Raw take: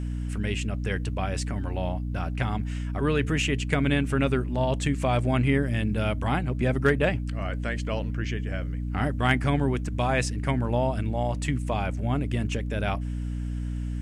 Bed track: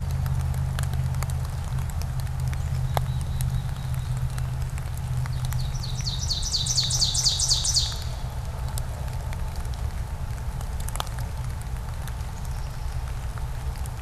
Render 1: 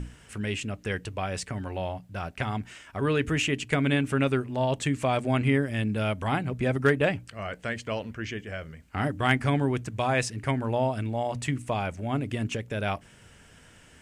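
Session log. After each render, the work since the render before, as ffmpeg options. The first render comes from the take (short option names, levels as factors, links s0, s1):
-af "bandreject=f=60:t=h:w=6,bandreject=f=120:t=h:w=6,bandreject=f=180:t=h:w=6,bandreject=f=240:t=h:w=6,bandreject=f=300:t=h:w=6"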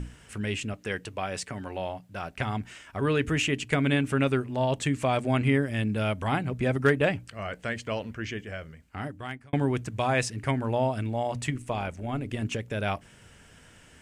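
-filter_complex "[0:a]asettb=1/sr,asplit=3[s0][s1][s2];[s0]atrim=end=0.734[s3];[s1]atrim=start=0.73:end=2.31,asetpts=PTS-STARTPTS,afade=t=in:d=0.004:c=qsin,afade=t=out:st=1.576:d=0.004:c=qsin,highpass=f=180:p=1[s4];[s2]atrim=start=2.306[s5];[s3][s4]acrossfade=d=0.004:c1=hsin:c2=qsin[s6];[s6][s5]acrossfade=d=0.004:c1=qsin:c2=hsin,asettb=1/sr,asplit=3[s7][s8][s9];[s7]atrim=end=11.504[s10];[s8]atrim=start=11.5:end=12.43,asetpts=PTS-STARTPTS,afade=t=in:d=0.004:c=qsin,afade=t=out:st=0.926:d=0.004:c=qsin,tremolo=f=140:d=0.462[s11];[s9]atrim=start=12.426[s12];[s10][s11]acrossfade=d=0.004:c1=hsin:c2=qsin[s13];[s13][s12]acrossfade=d=0.004:c1=qsin:c2=hsin,asplit=2[s14][s15];[s14]atrim=end=9.53,asetpts=PTS-STARTPTS,afade=t=out:st=8.39:d=1.14[s16];[s15]atrim=start=9.53,asetpts=PTS-STARTPTS,afade=t=in:d=0.004:c=hsin[s17];[s16][s17]concat=n=2:v=0:a=1"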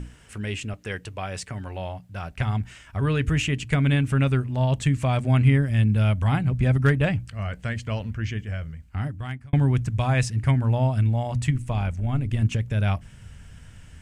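-af "asubboost=boost=6.5:cutoff=140"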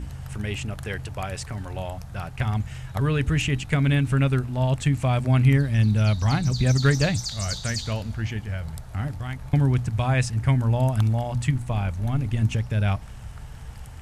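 -filter_complex "[1:a]volume=0.316[s0];[0:a][s0]amix=inputs=2:normalize=0"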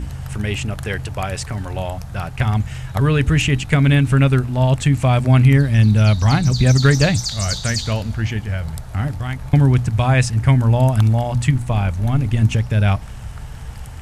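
-af "volume=2.24,alimiter=limit=0.708:level=0:latency=1"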